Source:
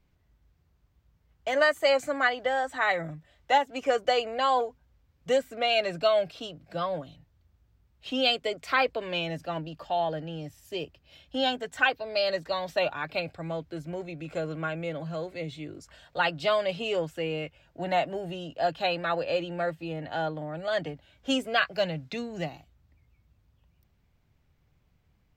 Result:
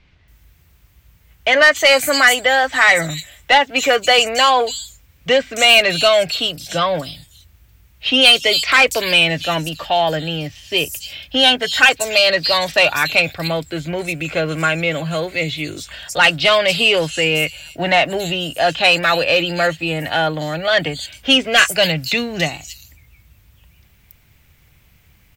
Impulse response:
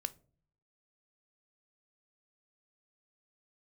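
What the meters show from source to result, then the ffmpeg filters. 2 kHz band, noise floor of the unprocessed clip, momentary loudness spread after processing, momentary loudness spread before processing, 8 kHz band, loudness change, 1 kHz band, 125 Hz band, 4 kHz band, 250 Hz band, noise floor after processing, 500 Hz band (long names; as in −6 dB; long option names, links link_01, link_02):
+16.5 dB, −68 dBFS, 12 LU, 12 LU, +24.0 dB, +14.0 dB, +10.5 dB, +12.0 dB, +18.5 dB, +11.0 dB, −53 dBFS, +10.0 dB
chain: -filter_complex "[0:a]equalizer=frequency=63:width=0.67:gain=4,acrossover=split=4800[link_01][link_02];[link_02]adelay=280[link_03];[link_01][link_03]amix=inputs=2:normalize=0,asplit=2[link_04][link_05];[link_05]alimiter=limit=-22.5dB:level=0:latency=1:release=22,volume=-2.5dB[link_06];[link_04][link_06]amix=inputs=2:normalize=0,crystalizer=i=4.5:c=0,equalizer=frequency=2300:width=1.1:gain=6.5,acontrast=84,volume=-1dB"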